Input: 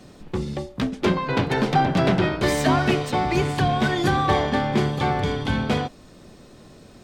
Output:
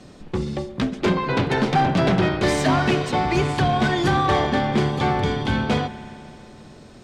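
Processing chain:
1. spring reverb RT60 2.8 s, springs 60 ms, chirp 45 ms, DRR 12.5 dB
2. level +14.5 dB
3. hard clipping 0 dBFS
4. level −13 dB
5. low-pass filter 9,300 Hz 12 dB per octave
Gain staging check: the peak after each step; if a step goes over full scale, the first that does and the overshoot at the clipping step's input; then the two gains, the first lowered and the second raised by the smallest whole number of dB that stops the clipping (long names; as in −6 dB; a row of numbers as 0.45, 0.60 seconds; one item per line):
−6.0, +8.5, 0.0, −13.0, −12.5 dBFS
step 2, 8.5 dB
step 2 +5.5 dB, step 4 −4 dB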